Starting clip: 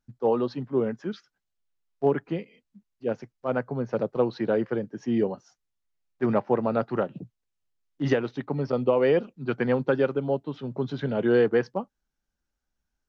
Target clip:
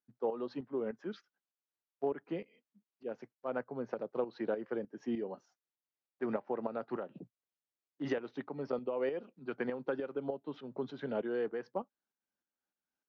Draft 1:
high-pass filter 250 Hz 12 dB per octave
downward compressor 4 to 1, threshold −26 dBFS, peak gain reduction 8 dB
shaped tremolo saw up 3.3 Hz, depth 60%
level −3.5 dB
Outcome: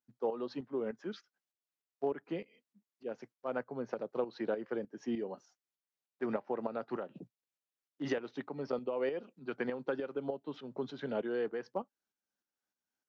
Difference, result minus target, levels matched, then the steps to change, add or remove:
4,000 Hz band +3.5 dB
add after downward compressor: low-pass filter 3,000 Hz 6 dB per octave

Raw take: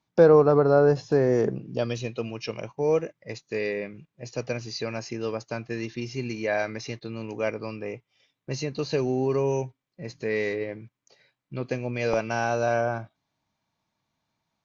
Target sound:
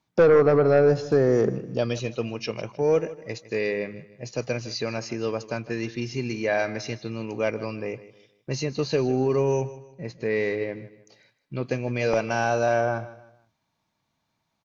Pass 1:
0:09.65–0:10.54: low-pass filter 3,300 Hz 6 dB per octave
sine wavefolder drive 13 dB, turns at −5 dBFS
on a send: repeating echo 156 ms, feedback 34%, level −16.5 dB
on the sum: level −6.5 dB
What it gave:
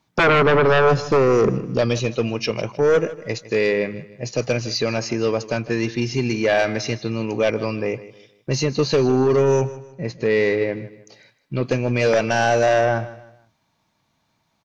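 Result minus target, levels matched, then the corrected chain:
sine wavefolder: distortion +13 dB
0:09.65–0:10.54: low-pass filter 3,300 Hz 6 dB per octave
sine wavefolder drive 5 dB, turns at −5 dBFS
on a send: repeating echo 156 ms, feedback 34%, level −16.5 dB
on the sum: level −6.5 dB

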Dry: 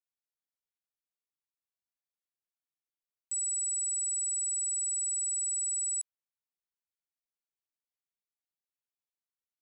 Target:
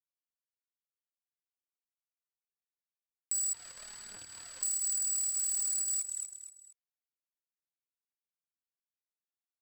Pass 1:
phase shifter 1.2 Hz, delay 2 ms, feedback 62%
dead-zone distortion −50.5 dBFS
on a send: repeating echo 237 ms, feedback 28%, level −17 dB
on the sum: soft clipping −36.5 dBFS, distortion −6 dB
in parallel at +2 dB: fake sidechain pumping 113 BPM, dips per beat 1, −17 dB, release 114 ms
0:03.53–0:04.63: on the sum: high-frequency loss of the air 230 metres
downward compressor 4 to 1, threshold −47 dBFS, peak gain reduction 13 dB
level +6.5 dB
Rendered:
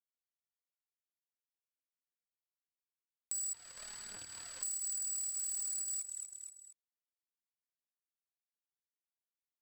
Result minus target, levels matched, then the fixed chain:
downward compressor: peak gain reduction +6 dB
phase shifter 1.2 Hz, delay 2 ms, feedback 62%
dead-zone distortion −50.5 dBFS
on a send: repeating echo 237 ms, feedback 28%, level −17 dB
on the sum: soft clipping −36.5 dBFS, distortion −6 dB
in parallel at +2 dB: fake sidechain pumping 113 BPM, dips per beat 1, −17 dB, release 114 ms
0:03.53–0:04.63: on the sum: high-frequency loss of the air 230 metres
downward compressor 4 to 1, threshold −39 dBFS, peak gain reduction 7 dB
level +6.5 dB

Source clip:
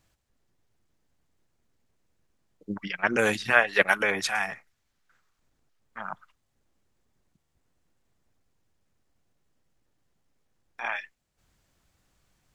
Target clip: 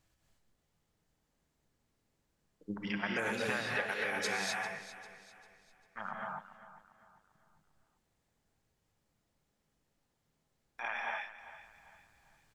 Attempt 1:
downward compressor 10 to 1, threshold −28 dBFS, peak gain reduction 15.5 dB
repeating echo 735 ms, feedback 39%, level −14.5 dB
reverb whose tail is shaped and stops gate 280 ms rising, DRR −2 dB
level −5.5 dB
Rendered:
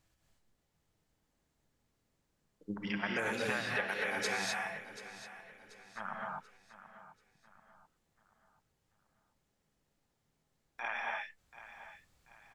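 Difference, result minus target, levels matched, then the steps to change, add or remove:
echo 338 ms late
change: repeating echo 397 ms, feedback 39%, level −14.5 dB

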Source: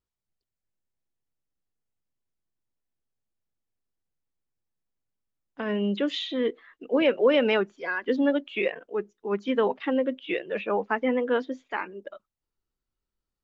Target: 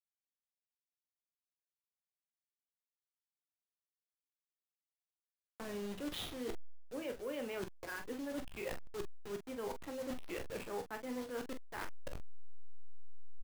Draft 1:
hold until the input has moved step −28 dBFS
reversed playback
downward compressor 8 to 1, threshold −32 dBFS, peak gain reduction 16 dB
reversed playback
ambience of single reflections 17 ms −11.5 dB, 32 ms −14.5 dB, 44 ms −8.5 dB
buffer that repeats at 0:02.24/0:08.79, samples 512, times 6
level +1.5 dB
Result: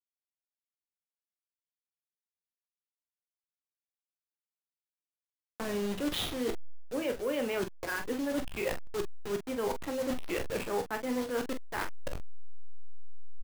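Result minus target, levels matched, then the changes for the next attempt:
downward compressor: peak gain reduction −9 dB
change: downward compressor 8 to 1, threshold −42.5 dBFS, peak gain reduction 25 dB

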